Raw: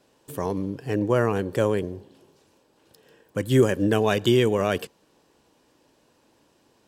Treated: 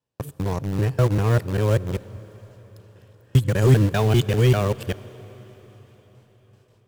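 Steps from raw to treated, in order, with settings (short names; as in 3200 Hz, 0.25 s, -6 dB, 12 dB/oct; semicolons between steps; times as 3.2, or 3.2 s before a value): local time reversal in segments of 0.197 s; gate with hold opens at -51 dBFS; HPF 44 Hz 12 dB/oct; in parallel at -8 dB: bit-crush 4-bit; on the sum: hard clip -9.5 dBFS, distortion -19 dB; resonant low shelf 180 Hz +9 dB, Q 1.5; on a send at -18 dB: reverb RT60 5.0 s, pre-delay 49 ms; on the sum: gain -3 dB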